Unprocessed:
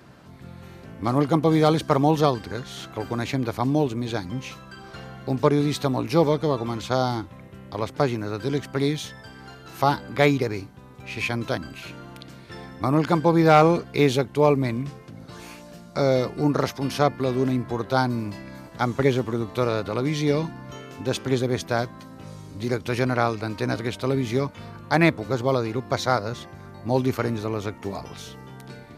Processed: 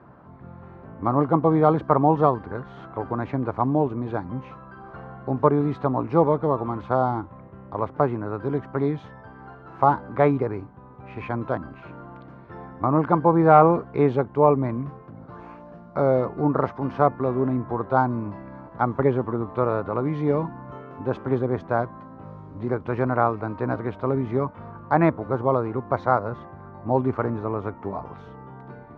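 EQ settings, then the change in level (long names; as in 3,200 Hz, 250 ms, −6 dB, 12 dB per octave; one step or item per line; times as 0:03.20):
low-pass with resonance 1,100 Hz, resonance Q 1.8
−1.0 dB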